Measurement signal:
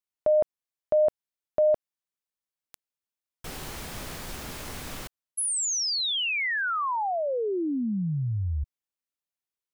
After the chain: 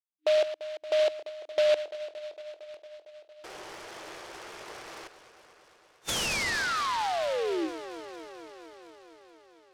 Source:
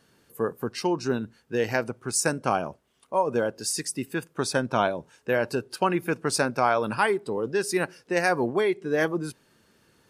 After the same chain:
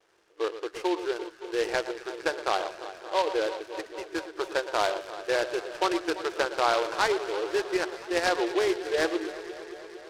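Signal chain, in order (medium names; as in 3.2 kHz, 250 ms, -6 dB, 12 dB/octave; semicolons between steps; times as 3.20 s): wow and flutter 0.42 Hz 18 cents; bit crusher 10-bit; on a send: echo whose repeats swap between lows and highs 114 ms, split 1.7 kHz, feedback 87%, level -12 dB; on the sum: FFT band-pass 310–3600 Hz; delay time shaken by noise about 2.6 kHz, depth 0.055 ms; trim -2 dB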